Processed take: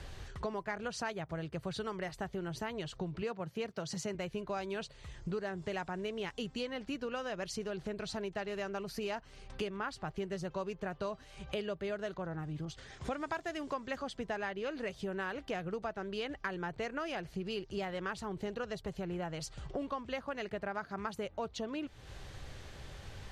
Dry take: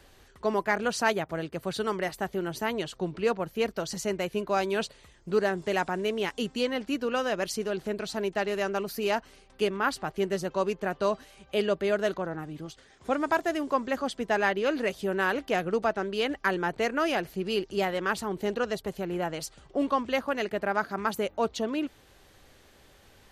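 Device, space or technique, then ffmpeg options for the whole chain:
jukebox: -filter_complex "[0:a]lowpass=7.7k,lowshelf=f=180:t=q:w=1.5:g=7,acompressor=threshold=-44dB:ratio=4,asettb=1/sr,asplit=3[a][b][c];[a]atrim=end=3.224[d];[b]atrim=start=3.22:end=4.15,asetpts=PTS-STARTPTS,afade=t=in:d=0.004:c=qsin,afade=t=out:st=0.926:d=0.004:c=qsin,highpass=f=100:w=0.5412,highpass=f=100:w=1.3066[e];[c]atrim=start=4.146[f];[d][e]acrossfade=d=0.004:c1=hsin:c2=qsin[g];[g][f]acrossfade=d=0.004:c1=qsin:c2=hsin,asettb=1/sr,asplit=3[h][i][j];[h]atrim=end=12.654[k];[i]atrim=start=12.65:end=14.03,asetpts=PTS-STARTPTS,afade=t=in:d=0.004:c=qsin,afade=t=out:st=1.376:d=0.004:c=qsin,adynamicequalizer=threshold=0.00126:dfrequency=1500:dqfactor=0.7:tfrequency=1500:tqfactor=0.7:attack=5:release=100:ratio=0.375:range=2:mode=boostabove:tftype=highshelf[l];[j]atrim=start=14.026[m];[k][l]acrossfade=d=0.004:c1=hsin:c2=qsin[n];[n][m]acrossfade=d=0.004:c1=qsin:c2=hsin,volume=5.5dB"

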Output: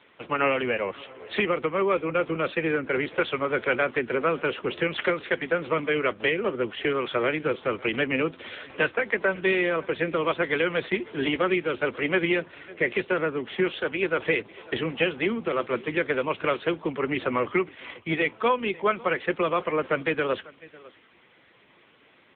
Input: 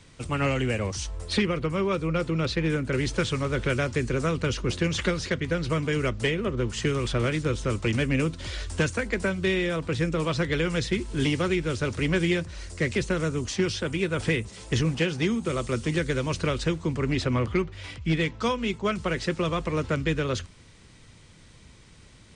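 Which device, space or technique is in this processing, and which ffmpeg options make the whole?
satellite phone: -filter_complex "[0:a]asettb=1/sr,asplit=3[a][b][c];[a]atrim=end=18.204[d];[b]atrim=start=18.2:end=19.31,asetpts=PTS-STARTPTS,afade=t=in:d=0.004:c=qsin,afade=t=out:st=1.106:d=0.004:c=qsin,acrossover=split=6200[e][f];[f]acompressor=threshold=-58dB:ratio=4:attack=1:release=60[g];[e][g]amix=inputs=2:normalize=0[h];[c]atrim=start=19.306[i];[d][h]acrossfade=d=0.004:c1=hsin:c2=qsin[j];[j][i]acrossfade=d=0.004:c1=qsin:c2=hsin,highpass=390,lowpass=3.4k,aecho=1:1:549:0.0841,volume=6dB" -ar 8000 -c:a libopencore_amrnb -b:a 6700

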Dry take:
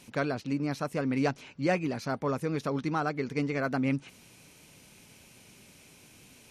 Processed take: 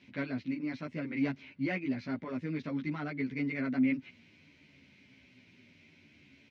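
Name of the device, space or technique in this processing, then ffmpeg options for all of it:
barber-pole flanger into a guitar amplifier: -filter_complex "[0:a]asplit=2[a][b];[b]adelay=11.8,afreqshift=-0.61[c];[a][c]amix=inputs=2:normalize=1,asoftclip=type=tanh:threshold=-22dB,highpass=82,equalizer=f=83:t=q:w=4:g=8,equalizer=f=260:t=q:w=4:g=9,equalizer=f=470:t=q:w=4:g=-6,equalizer=f=800:t=q:w=4:g=-9,equalizer=f=1.2k:t=q:w=4:g=-7,equalizer=f=2.1k:t=q:w=4:g=9,lowpass=f=4.3k:w=0.5412,lowpass=f=4.3k:w=1.3066,volume=-3dB"

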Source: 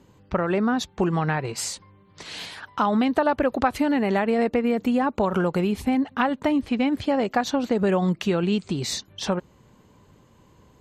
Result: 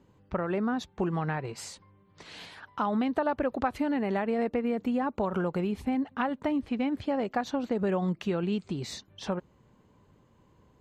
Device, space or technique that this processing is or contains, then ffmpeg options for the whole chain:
behind a face mask: -af "highshelf=f=3.5k:g=-8,volume=-6.5dB"

